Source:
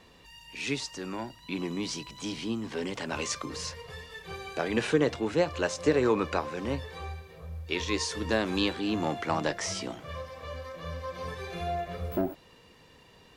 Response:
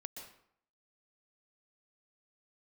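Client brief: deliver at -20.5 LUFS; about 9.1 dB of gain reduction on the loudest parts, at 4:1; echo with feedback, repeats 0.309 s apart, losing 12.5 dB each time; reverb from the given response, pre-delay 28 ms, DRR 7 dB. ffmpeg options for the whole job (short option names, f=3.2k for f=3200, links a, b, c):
-filter_complex "[0:a]acompressor=threshold=-30dB:ratio=4,aecho=1:1:309|618|927:0.237|0.0569|0.0137,asplit=2[a][b];[1:a]atrim=start_sample=2205,adelay=28[c];[b][c]afir=irnorm=-1:irlink=0,volume=-3.5dB[d];[a][d]amix=inputs=2:normalize=0,volume=14.5dB"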